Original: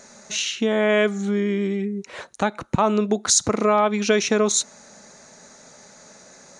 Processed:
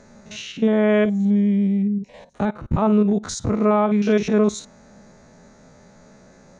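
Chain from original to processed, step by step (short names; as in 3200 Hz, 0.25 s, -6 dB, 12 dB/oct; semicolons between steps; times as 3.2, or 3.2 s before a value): stepped spectrum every 50 ms; RIAA curve playback; 1.05–2.34 fixed phaser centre 360 Hz, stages 6; gain -1.5 dB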